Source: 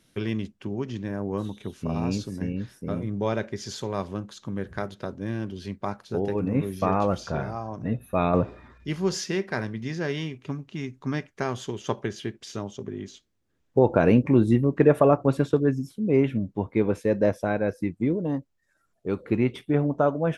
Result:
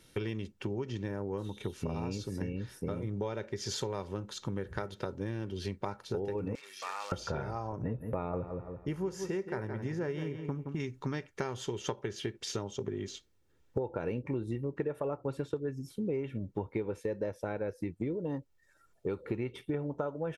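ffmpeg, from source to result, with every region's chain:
ffmpeg -i in.wav -filter_complex "[0:a]asettb=1/sr,asplit=3[link_01][link_02][link_03];[link_01]atrim=end=6.554[link_04];[link_02]atrim=start=6.55:end=7.12,asetpts=PTS-STARTPTS,afade=type=in:duration=0.004:curve=qsin,afade=type=out:start_time=0.566:duration=0.004:curve=qsin,acompressor=threshold=-26dB:ratio=2:attack=3.2:release=140:knee=1:detection=peak,acrusher=bits=5:mode=log:mix=0:aa=0.000001,asuperpass=centerf=3300:order=4:qfactor=0.6[link_05];[link_03]atrim=start=7.116[link_06];[link_04][link_05]acrossfade=duration=0.004:curve1=hsin:curve2=qsin[link_07];[link_07][link_06]acrossfade=duration=0.004:curve1=qsin:curve2=hsin,asettb=1/sr,asplit=3[link_08][link_09][link_10];[link_08]atrim=end=7.724[link_11];[link_09]atrim=start=7.72:end=10.8,asetpts=PTS-STARTPTS,afade=type=in:duration=0.004:curve=qsin,afade=type=out:start_time=3.076:duration=0.004:curve=qsin,agate=range=-13dB:threshold=-44dB:ratio=16:release=100:detection=peak,equalizer=frequency=4100:width=0.88:gain=-14.5,asplit=2[link_12][link_13];[link_13]adelay=169,lowpass=frequency=3300:poles=1,volume=-10dB,asplit=2[link_14][link_15];[link_15]adelay=169,lowpass=frequency=3300:poles=1,volume=0.24,asplit=2[link_16][link_17];[link_17]adelay=169,lowpass=frequency=3300:poles=1,volume=0.24[link_18];[link_12][link_14][link_16][link_18]amix=inputs=4:normalize=0,atrim=end_sample=135828[link_19];[link_10]atrim=start=10.796[link_20];[link_11][link_19]acrossfade=duration=0.004:curve1=hsin:curve2=qsin[link_21];[link_21][link_20]acrossfade=duration=0.004:curve1=qsin:curve2=hsin,aecho=1:1:2.2:0.41,acompressor=threshold=-34dB:ratio=10,volume=2.5dB" out.wav

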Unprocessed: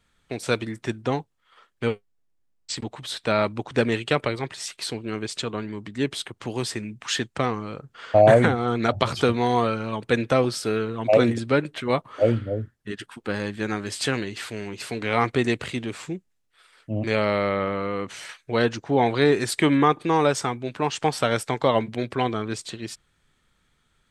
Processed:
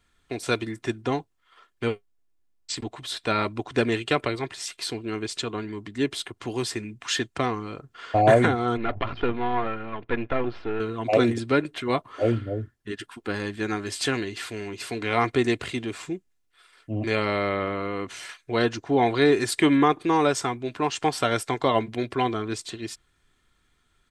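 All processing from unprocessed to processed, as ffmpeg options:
ffmpeg -i in.wav -filter_complex "[0:a]asettb=1/sr,asplit=3[link_01][link_02][link_03];[link_01]atrim=end=8.774[link_04];[link_02]atrim=start=8.77:end=10.8,asetpts=PTS-STARTPTS,afade=type=in:duration=0.004:curve=qsin,afade=type=out:start_time=2.026:duration=0.004:curve=qsin,aeval=exprs='if(lt(val(0),0),0.251*val(0),val(0))':channel_layout=same,lowpass=frequency=2900:width=0.5412,lowpass=frequency=2900:width=1.3066[link_05];[link_03]atrim=start=10.796[link_06];[link_04][link_05]acrossfade=duration=0.004:curve1=hsin:curve2=qsin[link_07];[link_07][link_06]acrossfade=duration=0.004:curve1=qsin:curve2=hsin,bandreject=frequency=630:width=15,aecho=1:1:2.9:0.38,volume=-1dB" out.wav

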